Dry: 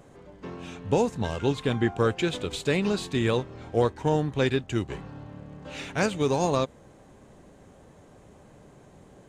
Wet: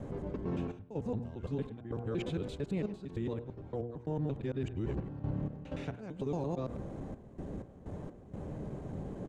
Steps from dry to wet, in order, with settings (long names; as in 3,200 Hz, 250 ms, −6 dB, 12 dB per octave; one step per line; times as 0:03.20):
reversed piece by piece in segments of 113 ms
reversed playback
downward compressor 16 to 1, threshold −38 dBFS, peak gain reduction 21.5 dB
reversed playback
high-shelf EQ 5,100 Hz −6.5 dB
gate pattern "xxx.x.x.x" 63 BPM −12 dB
tilt shelving filter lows +7.5 dB, about 720 Hz
hum removal 118.9 Hz, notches 13
far-end echo of a speakerphone 100 ms, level −17 dB
brickwall limiter −32.5 dBFS, peak gain reduction 11 dB
level +6 dB